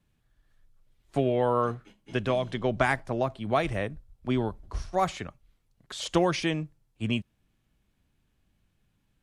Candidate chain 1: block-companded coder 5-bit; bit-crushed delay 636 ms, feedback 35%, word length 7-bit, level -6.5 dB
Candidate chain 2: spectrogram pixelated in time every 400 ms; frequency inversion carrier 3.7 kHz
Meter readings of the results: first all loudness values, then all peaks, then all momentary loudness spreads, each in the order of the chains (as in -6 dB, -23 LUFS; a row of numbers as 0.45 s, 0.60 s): -29.0 LUFS, -29.5 LUFS; -9.0 dBFS, -15.0 dBFS; 13 LU, 15 LU